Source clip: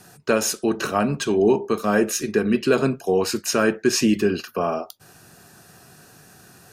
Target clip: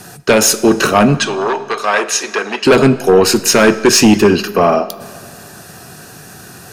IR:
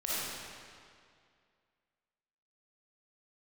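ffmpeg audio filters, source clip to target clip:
-filter_complex "[0:a]aeval=exprs='0.531*sin(PI/2*2.24*val(0)/0.531)':c=same,asettb=1/sr,asplit=3[s0][s1][s2];[s0]atrim=end=1.194[s3];[s1]atrim=start=1.19:end=2.65,asetpts=PTS-STARTPTS,afade=t=in:d=0.004:c=qsin,afade=t=out:st=1.456:d=0.004:c=qsin,highpass=740,lowpass=6600[s4];[s2]atrim=start=2.646[s5];[s3][s4]acrossfade=d=0.004:c1=hsin:c2=qsin[s6];[s6][s5]acrossfade=d=0.004:c1=qsin:c2=hsin,asplit=2[s7][s8];[1:a]atrim=start_sample=2205[s9];[s8][s9]afir=irnorm=-1:irlink=0,volume=0.0794[s10];[s7][s10]amix=inputs=2:normalize=0,volume=1.26"

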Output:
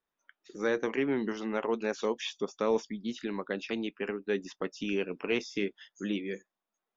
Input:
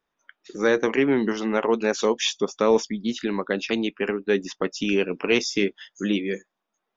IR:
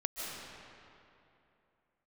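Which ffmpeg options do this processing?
-filter_complex "[0:a]acrossover=split=3600[s0][s1];[s1]acompressor=threshold=0.0141:ratio=4:attack=1:release=60[s2];[s0][s2]amix=inputs=2:normalize=0,volume=0.355"

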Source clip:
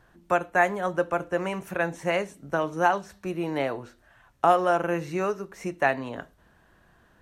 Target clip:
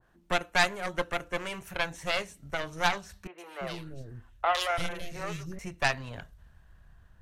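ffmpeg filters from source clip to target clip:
-filter_complex "[0:a]asubboost=boost=10.5:cutoff=93,aeval=exprs='0.422*(cos(1*acos(clip(val(0)/0.422,-1,1)))-cos(1*PI/2))+0.0944*(cos(6*acos(clip(val(0)/0.422,-1,1)))-cos(6*PI/2))':c=same,asettb=1/sr,asplit=3[s0][s1][s2];[s0]atrim=end=3.274[s3];[s1]atrim=start=3.27:end=5.59,asetpts=PTS-STARTPTS,afade=t=in:d=0.004:c=qsin,afade=t=out:st=2.316:d=0.004:c=qsin,acrossover=split=390|2400[s4][s5][s6];[s6]adelay=110[s7];[s4]adelay=340[s8];[s8][s5][s7]amix=inputs=3:normalize=0,atrim=end_sample=102312[s9];[s2]atrim=start=5.586[s10];[s3][s9]acrossfade=d=0.004:c1=hsin:c2=qsin[s11];[s11][s10]acrossfade=d=0.004:c1=qsin:c2=hsin,adynamicequalizer=threshold=0.0126:dfrequency=1700:dqfactor=0.7:tfrequency=1700:tqfactor=0.7:attack=5:release=100:ratio=0.375:range=4:mode=boostabove:tftype=highshelf,volume=0.447"

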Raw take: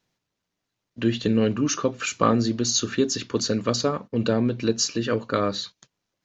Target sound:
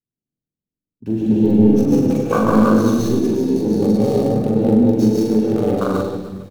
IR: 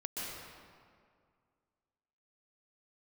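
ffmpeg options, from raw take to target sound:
-filter_complex "[0:a]asplit=2[s0][s1];[s1]asoftclip=type=tanh:threshold=0.168,volume=0.473[s2];[s0][s2]amix=inputs=2:normalize=0[s3];[1:a]atrim=start_sample=2205[s4];[s3][s4]afir=irnorm=-1:irlink=0,acrossover=split=490[s5][s6];[s6]acrusher=bits=4:dc=4:mix=0:aa=0.000001[s7];[s5][s7]amix=inputs=2:normalize=0,afwtdn=0.0891,aecho=1:1:40|96|174.4|284.2|437.8:0.631|0.398|0.251|0.158|0.1,asetrate=42336,aresample=44100,bandreject=f=4900:w=28,volume=1.26"

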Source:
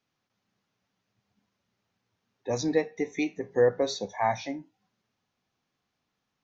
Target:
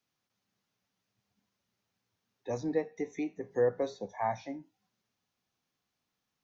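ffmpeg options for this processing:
-filter_complex "[0:a]highshelf=f=5000:g=8.5,acrossover=split=360|1700[s0][s1][s2];[s2]acompressor=threshold=0.00355:ratio=6[s3];[s0][s1][s3]amix=inputs=3:normalize=0,volume=0.531"

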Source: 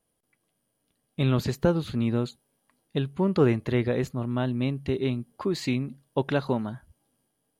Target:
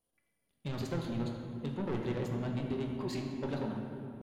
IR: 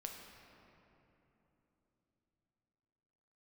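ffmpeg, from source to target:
-filter_complex "[0:a]bandreject=f=150.2:t=h:w=4,bandreject=f=300.4:t=h:w=4,bandreject=f=450.6:t=h:w=4,bandreject=f=600.8:t=h:w=4,bandreject=f=751:t=h:w=4,bandreject=f=901.2:t=h:w=4,bandreject=f=1051.4:t=h:w=4,bandreject=f=1201.6:t=h:w=4,bandreject=f=1351.8:t=h:w=4,bandreject=f=1502:t=h:w=4,bandreject=f=1652.2:t=h:w=4,bandreject=f=1802.4:t=h:w=4,bandreject=f=1952.6:t=h:w=4,bandreject=f=2102.8:t=h:w=4,bandreject=f=2253:t=h:w=4,asoftclip=type=tanh:threshold=0.0562,atempo=1.8[s0];[1:a]atrim=start_sample=2205,asetrate=57330,aresample=44100[s1];[s0][s1]afir=irnorm=-1:irlink=0"

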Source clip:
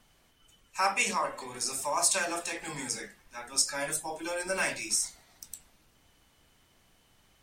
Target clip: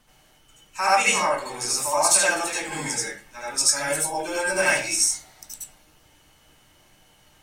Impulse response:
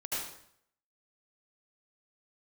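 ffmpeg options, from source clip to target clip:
-filter_complex "[0:a]bandreject=f=110.6:t=h:w=4,bandreject=f=221.2:t=h:w=4,bandreject=f=331.8:t=h:w=4,bandreject=f=442.4:t=h:w=4,bandreject=f=553:t=h:w=4,bandreject=f=663.6:t=h:w=4,bandreject=f=774.2:t=h:w=4,bandreject=f=884.8:t=h:w=4,bandreject=f=995.4:t=h:w=4,bandreject=f=1106:t=h:w=4,bandreject=f=1216.6:t=h:w=4,bandreject=f=1327.2:t=h:w=4,bandreject=f=1437.8:t=h:w=4,bandreject=f=1548.4:t=h:w=4,bandreject=f=1659:t=h:w=4,bandreject=f=1769.6:t=h:w=4,bandreject=f=1880.2:t=h:w=4,bandreject=f=1990.8:t=h:w=4,bandreject=f=2101.4:t=h:w=4,bandreject=f=2212:t=h:w=4,bandreject=f=2322.6:t=h:w=4,bandreject=f=2433.2:t=h:w=4,bandreject=f=2543.8:t=h:w=4,bandreject=f=2654.4:t=h:w=4,bandreject=f=2765:t=h:w=4,bandreject=f=2875.6:t=h:w=4,bandreject=f=2986.2:t=h:w=4,bandreject=f=3096.8:t=h:w=4,bandreject=f=3207.4:t=h:w=4,bandreject=f=3318:t=h:w=4,bandreject=f=3428.6:t=h:w=4,bandreject=f=3539.2:t=h:w=4,bandreject=f=3649.8:t=h:w=4,bandreject=f=3760.4:t=h:w=4,bandreject=f=3871:t=h:w=4,bandreject=f=3981.6:t=h:w=4[s0];[1:a]atrim=start_sample=2205,atrim=end_sample=4410[s1];[s0][s1]afir=irnorm=-1:irlink=0,volume=2.37"

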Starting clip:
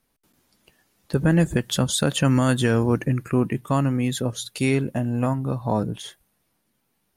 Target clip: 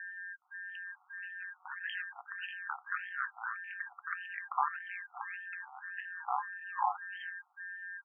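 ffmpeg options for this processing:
-filter_complex "[0:a]lowpass=f=11000:w=0.5412,lowpass=f=11000:w=1.3066,highshelf=f=4400:t=q:w=1.5:g=9.5,bandreject=f=70.49:t=h:w=4,bandreject=f=140.98:t=h:w=4,bandreject=f=211.47:t=h:w=4,acompressor=threshold=0.0251:ratio=4,acrossover=split=330|2500[s0][s1][s2];[s0]adelay=220[s3];[s1]adelay=380[s4];[s3][s4][s2]amix=inputs=3:normalize=0,aeval=exprs='val(0)+0.00282*sin(2*PI*1700*n/s)':c=same,aeval=exprs='val(0)*sin(2*PI*92*n/s)':c=same,atempo=0.89,afftfilt=real='re*between(b*sr/1024,990*pow(2300/990,0.5+0.5*sin(2*PI*1.7*pts/sr))/1.41,990*pow(2300/990,0.5+0.5*sin(2*PI*1.7*pts/sr))*1.41)':imag='im*between(b*sr/1024,990*pow(2300/990,0.5+0.5*sin(2*PI*1.7*pts/sr))/1.41,990*pow(2300/990,0.5+0.5*sin(2*PI*1.7*pts/sr))*1.41)':win_size=1024:overlap=0.75,volume=4.47"

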